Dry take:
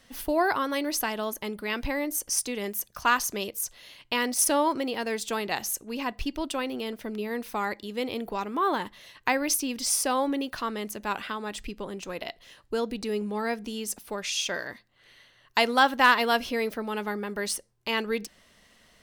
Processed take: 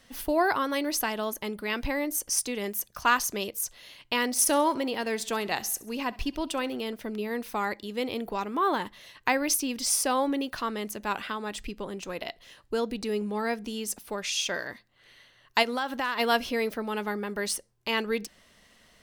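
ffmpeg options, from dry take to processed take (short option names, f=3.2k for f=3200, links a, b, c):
-filter_complex "[0:a]asettb=1/sr,asplit=3[a][b][c];[a]atrim=end=4.264[d];[b]atrim=start=4.26:end=6.77,asetpts=PTS-STARTPTS,afade=t=in:d=0.004:c=qsin,afade=t=out:st=2.506:d=0.004:c=qsin,aecho=1:1:67|134|201|268:0.0891|0.0455|0.0232|0.0118,atrim=end_sample=110691[e];[c]atrim=start=6.766[f];[d][e]acrossfade=d=0.004:c1=hsin:c2=qsin[g];[g][f]acrossfade=d=0.004:c1=qsin:c2=hsin,asplit=3[h][i][j];[h]afade=t=out:st=15.62:d=0.02[k];[i]acompressor=threshold=-27dB:ratio=4:attack=3.2:release=140:knee=1:detection=peak,afade=t=in:st=15.62:d=0.02,afade=t=out:st=16.18:d=0.02[l];[j]afade=t=in:st=16.18:d=0.02[m];[k][l][m]amix=inputs=3:normalize=0"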